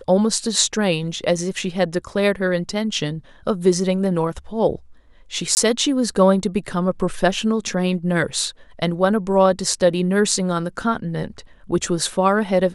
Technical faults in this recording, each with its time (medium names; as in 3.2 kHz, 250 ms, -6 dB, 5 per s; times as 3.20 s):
5.55–5.57 s: dropout 19 ms